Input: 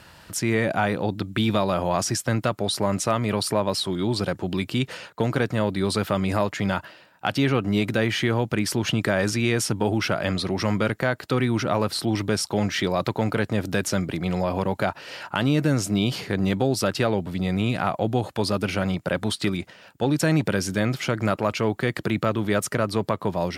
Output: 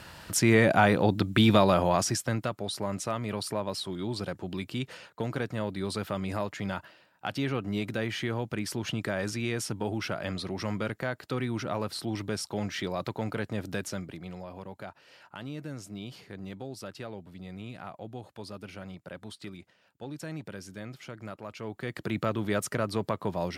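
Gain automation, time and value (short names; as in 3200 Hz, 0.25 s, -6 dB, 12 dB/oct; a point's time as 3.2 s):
1.67 s +1.5 dB
2.57 s -9 dB
13.75 s -9 dB
14.47 s -18 dB
21.47 s -18 dB
22.19 s -6 dB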